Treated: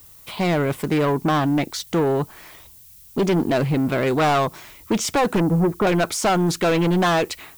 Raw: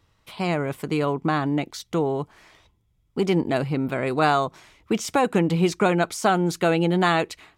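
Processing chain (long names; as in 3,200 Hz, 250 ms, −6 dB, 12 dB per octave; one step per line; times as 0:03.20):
0:05.40–0:05.87: low-pass filter 1,200 Hz 24 dB per octave
soft clipping −22 dBFS, distortion −9 dB
background noise violet −54 dBFS
highs frequency-modulated by the lows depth 0.18 ms
level +7.5 dB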